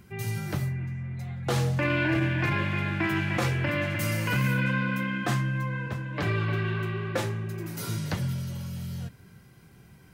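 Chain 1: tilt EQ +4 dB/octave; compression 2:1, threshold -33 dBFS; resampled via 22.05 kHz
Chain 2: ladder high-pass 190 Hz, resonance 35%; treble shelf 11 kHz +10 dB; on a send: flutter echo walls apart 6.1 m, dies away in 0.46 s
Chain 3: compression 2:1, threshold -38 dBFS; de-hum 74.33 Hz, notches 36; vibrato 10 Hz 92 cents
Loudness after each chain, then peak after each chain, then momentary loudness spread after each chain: -33.5 LUFS, -35.0 LUFS, -36.0 LUFS; -18.5 dBFS, -19.0 dBFS, -23.0 dBFS; 9 LU, 15 LU, 6 LU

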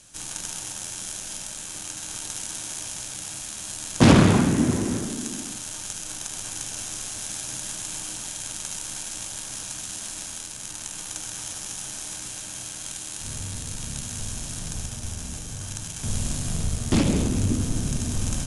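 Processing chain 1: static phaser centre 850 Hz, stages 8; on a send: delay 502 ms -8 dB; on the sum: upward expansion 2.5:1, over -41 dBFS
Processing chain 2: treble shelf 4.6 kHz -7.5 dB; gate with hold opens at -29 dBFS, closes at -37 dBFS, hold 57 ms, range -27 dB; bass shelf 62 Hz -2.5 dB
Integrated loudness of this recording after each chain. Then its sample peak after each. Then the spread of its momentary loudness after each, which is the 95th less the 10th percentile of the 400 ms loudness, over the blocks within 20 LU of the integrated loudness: -30.0 LUFS, -29.0 LUFS; -5.5 dBFS, -2.5 dBFS; 26 LU, 15 LU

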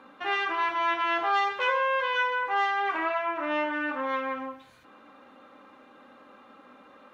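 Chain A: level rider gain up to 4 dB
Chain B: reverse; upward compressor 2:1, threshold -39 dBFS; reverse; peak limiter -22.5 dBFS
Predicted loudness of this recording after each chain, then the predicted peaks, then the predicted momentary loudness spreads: -23.5 LUFS, -30.0 LUFS; -10.0 dBFS, -22.5 dBFS; 6 LU, 19 LU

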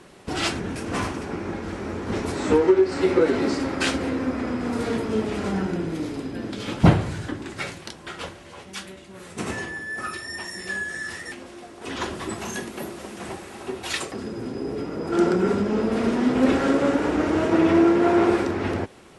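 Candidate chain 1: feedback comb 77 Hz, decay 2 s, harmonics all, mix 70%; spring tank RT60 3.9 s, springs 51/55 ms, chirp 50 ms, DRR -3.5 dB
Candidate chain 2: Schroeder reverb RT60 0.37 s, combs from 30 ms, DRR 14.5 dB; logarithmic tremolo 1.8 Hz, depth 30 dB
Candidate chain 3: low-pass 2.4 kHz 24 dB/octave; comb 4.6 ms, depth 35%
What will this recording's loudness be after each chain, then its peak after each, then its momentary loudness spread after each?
-28.0 LUFS, -30.0 LUFS, -24.0 LUFS; -11.0 dBFS, -8.0 dBFS, -3.0 dBFS; 17 LU, 19 LU, 17 LU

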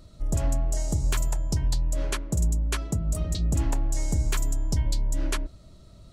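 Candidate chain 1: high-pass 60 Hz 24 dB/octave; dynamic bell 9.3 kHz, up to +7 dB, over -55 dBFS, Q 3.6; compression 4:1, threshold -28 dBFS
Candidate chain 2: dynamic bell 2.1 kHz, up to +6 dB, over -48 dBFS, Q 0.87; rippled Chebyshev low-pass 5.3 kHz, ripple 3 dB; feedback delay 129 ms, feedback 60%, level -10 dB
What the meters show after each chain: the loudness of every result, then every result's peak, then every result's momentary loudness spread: -34.0 LUFS, -30.5 LUFS; -15.5 dBFS, -15.5 dBFS; 3 LU, 5 LU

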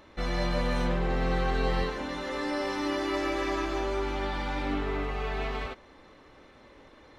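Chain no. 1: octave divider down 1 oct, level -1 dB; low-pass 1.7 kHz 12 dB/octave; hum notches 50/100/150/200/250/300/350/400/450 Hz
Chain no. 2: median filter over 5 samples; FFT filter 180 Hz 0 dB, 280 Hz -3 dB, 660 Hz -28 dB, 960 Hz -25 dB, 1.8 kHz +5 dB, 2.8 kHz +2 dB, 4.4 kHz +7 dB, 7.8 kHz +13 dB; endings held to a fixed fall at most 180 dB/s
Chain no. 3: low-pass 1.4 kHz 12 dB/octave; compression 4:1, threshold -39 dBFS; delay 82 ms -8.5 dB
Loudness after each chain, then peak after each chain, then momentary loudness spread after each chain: -31.5 LUFS, -32.0 LUFS, -40.5 LUFS; -15.5 dBFS, -17.0 dBFS, -27.5 dBFS; 6 LU, 4 LU, 16 LU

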